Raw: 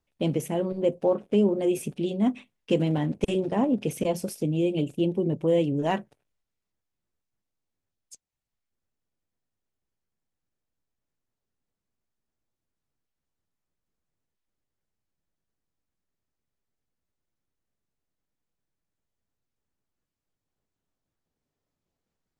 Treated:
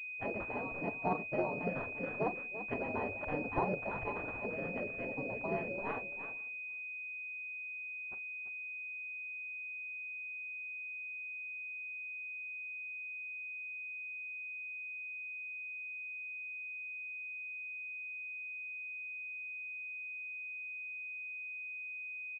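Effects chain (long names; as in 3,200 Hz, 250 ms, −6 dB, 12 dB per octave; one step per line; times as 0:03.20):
on a send: multi-tap delay 40/340 ms −14.5/−11 dB
on the sum: gate on every frequency bin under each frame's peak −15 dB weak
slap from a distant wall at 85 metres, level −26 dB
buffer that repeats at 0:07.56/0:18.73/0:19.39/0:21.82, samples 1,024, times 4
switching amplifier with a slow clock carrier 2,500 Hz
level +3 dB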